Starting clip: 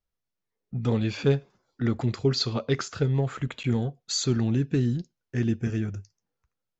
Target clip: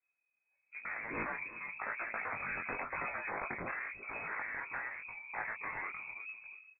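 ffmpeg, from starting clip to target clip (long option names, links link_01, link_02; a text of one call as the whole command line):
ffmpeg -i in.wav -filter_complex "[0:a]asettb=1/sr,asplit=3[link_01][link_02][link_03];[link_01]atrim=end=2.464[link_04];[link_02]atrim=start=2.46:end=3.68,asetpts=PTS-STARTPTS,afade=type=in:duration=0.004:curve=qsin,afade=type=out:start_time=1.216:duration=0.004:curve=qsin,highpass=700[link_05];[link_03]atrim=start=3.676[link_06];[link_04][link_05]acrossfade=duration=0.004:curve1=hsin:curve2=qsin[link_07];[link_07][link_06]acrossfade=duration=0.004:curve1=qsin:curve2=hsin,asplit=2[link_08][link_09];[link_09]aecho=0:1:347|694:0.0944|0.0189[link_10];[link_08][link_10]amix=inputs=2:normalize=0,asoftclip=type=hard:threshold=-27dB,acompressor=threshold=-33dB:ratio=6,afreqshift=-78,dynaudnorm=framelen=390:gausssize=5:maxgain=10dB,lowpass=frequency=2200:width_type=q:width=0.5098,lowpass=frequency=2200:width_type=q:width=0.6013,lowpass=frequency=2200:width_type=q:width=0.9,lowpass=frequency=2200:width_type=q:width=2.563,afreqshift=-2600,afftfilt=real='re*lt(hypot(re,im),0.0794)':imag='im*lt(hypot(re,im),0.0794)':win_size=1024:overlap=0.75,flanger=delay=17.5:depth=5.5:speed=0.95,volume=3.5dB" out.wav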